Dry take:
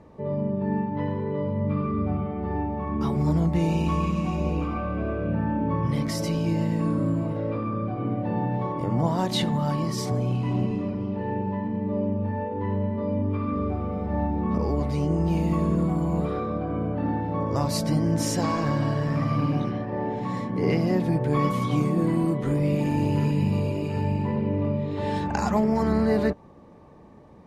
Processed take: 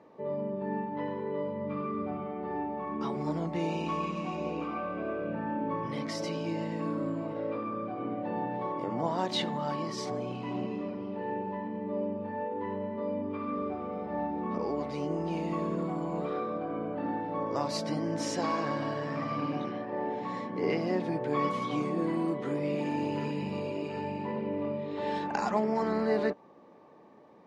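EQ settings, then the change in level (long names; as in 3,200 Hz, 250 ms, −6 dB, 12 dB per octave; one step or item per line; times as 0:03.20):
band-pass filter 290–5,500 Hz
−3.0 dB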